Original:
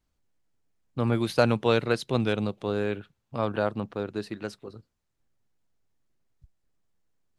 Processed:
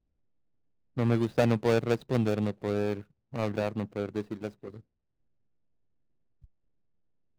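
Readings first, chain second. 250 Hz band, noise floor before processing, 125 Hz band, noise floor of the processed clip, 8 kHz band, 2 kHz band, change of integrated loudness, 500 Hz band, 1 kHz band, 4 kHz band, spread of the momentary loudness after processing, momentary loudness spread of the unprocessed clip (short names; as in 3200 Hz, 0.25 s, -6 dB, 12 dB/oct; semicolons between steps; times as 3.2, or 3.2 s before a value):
-0.5 dB, -78 dBFS, -0.5 dB, -79 dBFS, -3.0 dB, -5.0 dB, -2.0 dB, -2.0 dB, -5.0 dB, -7.5 dB, 14 LU, 15 LU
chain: median filter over 41 samples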